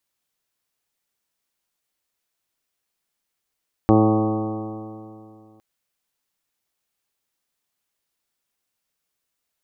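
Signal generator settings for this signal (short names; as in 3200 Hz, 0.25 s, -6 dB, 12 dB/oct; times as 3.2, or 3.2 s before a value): stretched partials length 1.71 s, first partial 108 Hz, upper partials 0/4/-4/-4/-11/-3.5/-12.5/-19/-9.5/-18.5 dB, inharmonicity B 0.00064, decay 2.57 s, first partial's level -17.5 dB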